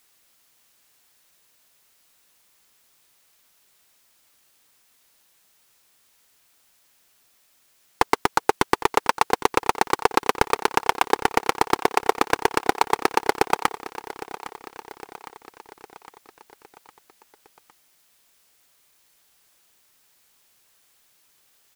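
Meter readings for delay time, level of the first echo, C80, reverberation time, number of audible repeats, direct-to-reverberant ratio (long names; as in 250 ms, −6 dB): 809 ms, −15.0 dB, no reverb audible, no reverb audible, 4, no reverb audible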